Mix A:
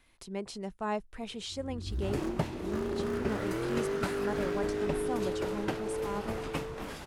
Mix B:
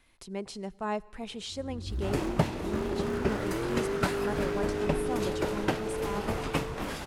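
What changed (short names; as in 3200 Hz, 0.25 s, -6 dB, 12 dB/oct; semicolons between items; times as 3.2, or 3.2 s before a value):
second sound +4.5 dB; reverb: on, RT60 1.8 s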